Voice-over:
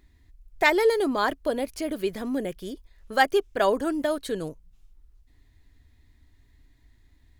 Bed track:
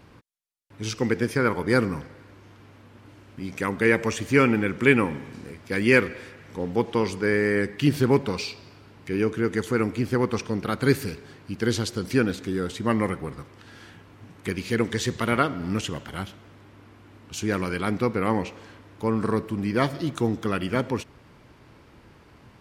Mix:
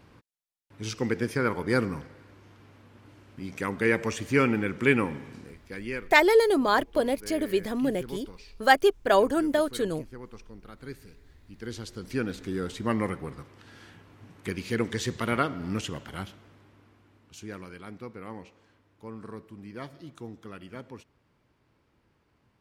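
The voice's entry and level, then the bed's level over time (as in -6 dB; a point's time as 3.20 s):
5.50 s, +1.5 dB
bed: 5.36 s -4 dB
6.13 s -20.5 dB
11.08 s -20.5 dB
12.54 s -4 dB
16.27 s -4 dB
17.83 s -17 dB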